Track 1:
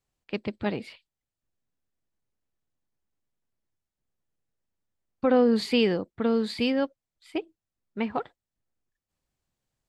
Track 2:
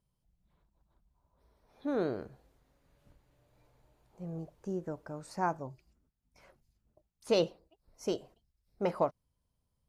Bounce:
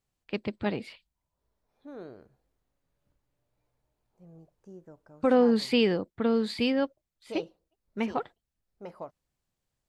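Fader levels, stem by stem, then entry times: -1.0 dB, -11.5 dB; 0.00 s, 0.00 s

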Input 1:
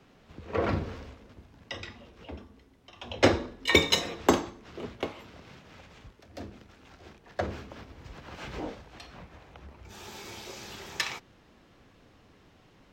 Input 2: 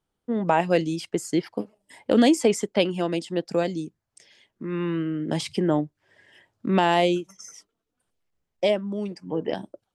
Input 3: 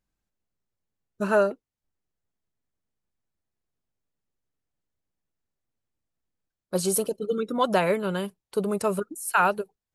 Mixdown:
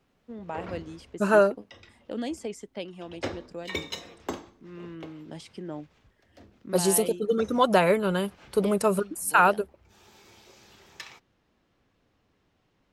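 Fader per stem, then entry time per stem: -11.5 dB, -15.0 dB, +2.0 dB; 0.00 s, 0.00 s, 0.00 s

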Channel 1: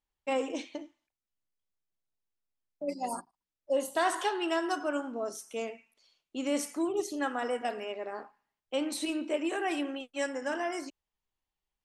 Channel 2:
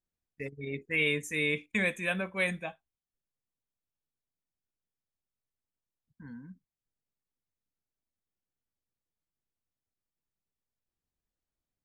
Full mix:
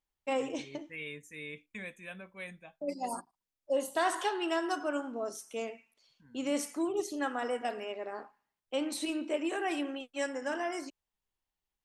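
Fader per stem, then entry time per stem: -1.5 dB, -14.0 dB; 0.00 s, 0.00 s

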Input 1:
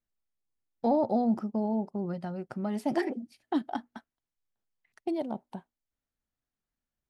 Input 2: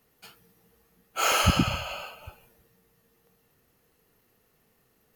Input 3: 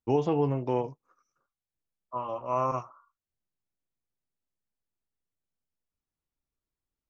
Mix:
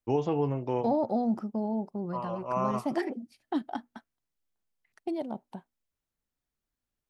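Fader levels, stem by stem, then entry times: -1.5 dB, mute, -2.0 dB; 0.00 s, mute, 0.00 s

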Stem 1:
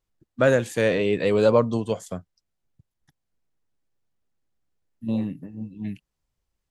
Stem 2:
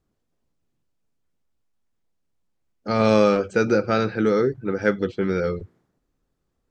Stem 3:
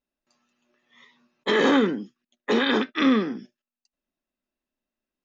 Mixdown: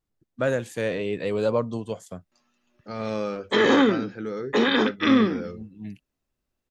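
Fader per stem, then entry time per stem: -5.5 dB, -12.0 dB, +1.0 dB; 0.00 s, 0.00 s, 2.05 s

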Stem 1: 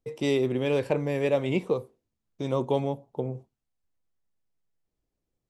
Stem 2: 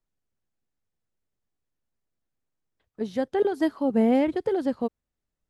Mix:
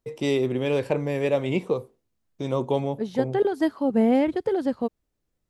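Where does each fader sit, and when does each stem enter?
+1.5 dB, +1.0 dB; 0.00 s, 0.00 s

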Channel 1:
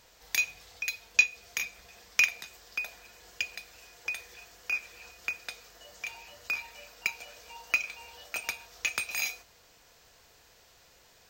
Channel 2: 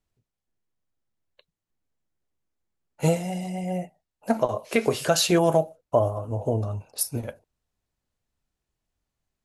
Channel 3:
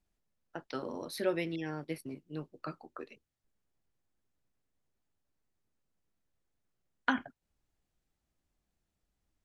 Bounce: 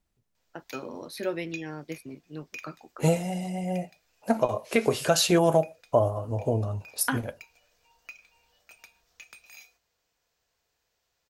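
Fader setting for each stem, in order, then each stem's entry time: -18.0 dB, -1.0 dB, +1.0 dB; 0.35 s, 0.00 s, 0.00 s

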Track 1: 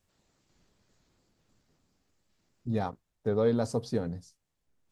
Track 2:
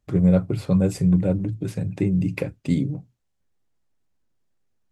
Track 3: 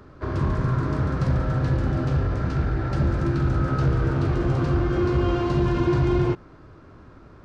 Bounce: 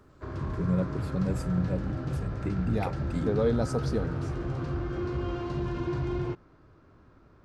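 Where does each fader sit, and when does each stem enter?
0.0 dB, -10.5 dB, -10.0 dB; 0.00 s, 0.45 s, 0.00 s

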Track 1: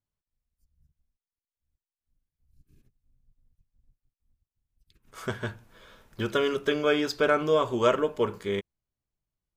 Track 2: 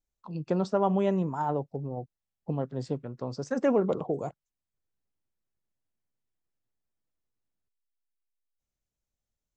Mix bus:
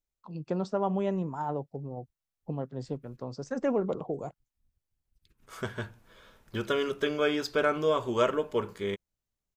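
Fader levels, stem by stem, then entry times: -3.0 dB, -3.5 dB; 0.35 s, 0.00 s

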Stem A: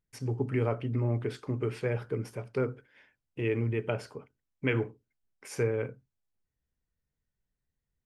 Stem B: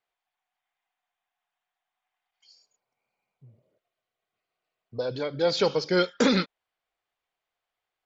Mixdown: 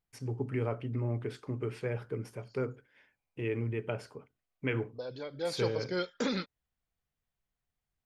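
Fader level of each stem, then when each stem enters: -4.0 dB, -10.5 dB; 0.00 s, 0.00 s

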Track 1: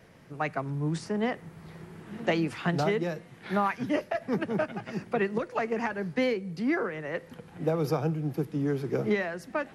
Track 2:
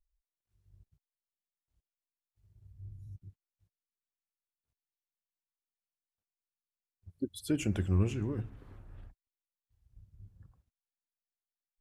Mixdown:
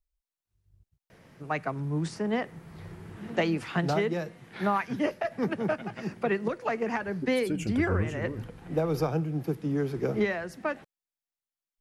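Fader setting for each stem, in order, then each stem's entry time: 0.0 dB, -1.0 dB; 1.10 s, 0.00 s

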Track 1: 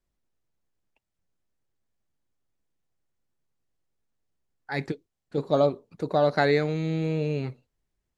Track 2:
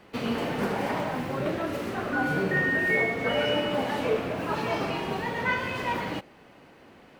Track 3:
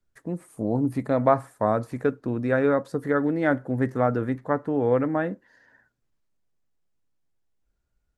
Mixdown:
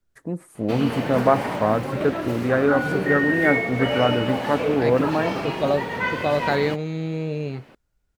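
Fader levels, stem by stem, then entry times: 0.0 dB, +2.0 dB, +2.0 dB; 0.10 s, 0.55 s, 0.00 s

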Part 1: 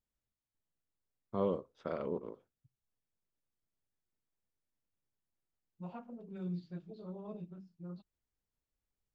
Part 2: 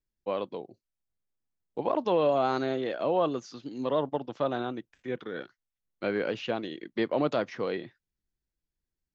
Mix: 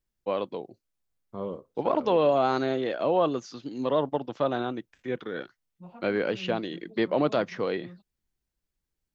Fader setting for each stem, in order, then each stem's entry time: -1.5 dB, +2.5 dB; 0.00 s, 0.00 s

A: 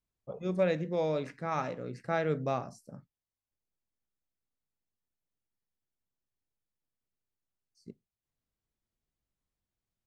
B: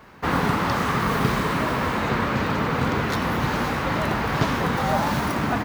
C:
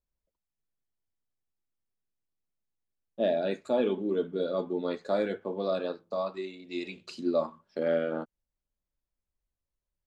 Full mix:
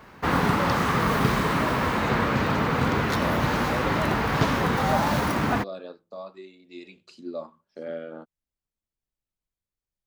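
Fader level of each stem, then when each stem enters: -6.0 dB, -0.5 dB, -7.0 dB; 0.00 s, 0.00 s, 0.00 s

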